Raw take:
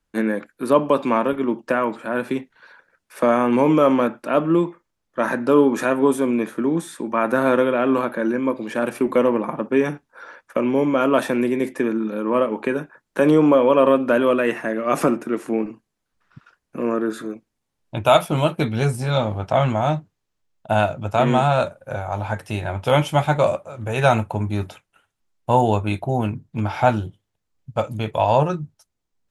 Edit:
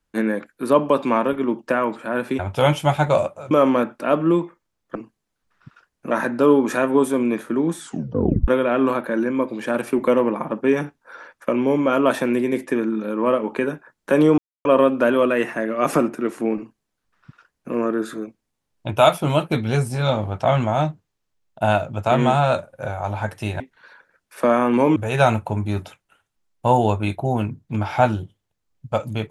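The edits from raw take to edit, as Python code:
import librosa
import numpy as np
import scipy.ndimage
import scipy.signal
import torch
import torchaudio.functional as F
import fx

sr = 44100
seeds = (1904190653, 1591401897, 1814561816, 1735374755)

y = fx.edit(x, sr, fx.swap(start_s=2.39, length_s=1.36, other_s=22.68, other_length_s=1.12),
    fx.tape_stop(start_s=6.87, length_s=0.69),
    fx.silence(start_s=13.46, length_s=0.27),
    fx.duplicate(start_s=15.65, length_s=1.16, to_s=5.19), tone=tone)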